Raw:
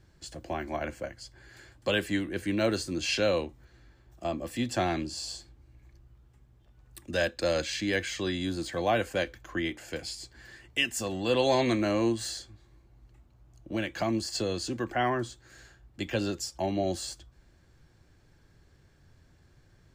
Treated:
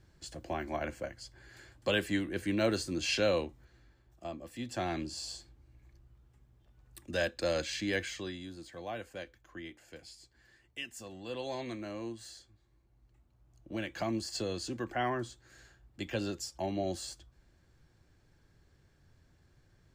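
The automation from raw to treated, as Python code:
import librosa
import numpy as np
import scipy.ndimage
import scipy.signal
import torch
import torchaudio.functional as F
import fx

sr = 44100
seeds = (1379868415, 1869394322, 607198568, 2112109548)

y = fx.gain(x, sr, db=fx.line((3.46, -2.5), (4.51, -11.0), (5.04, -4.0), (8.03, -4.0), (8.49, -14.0), (12.25, -14.0), (13.94, -5.0)))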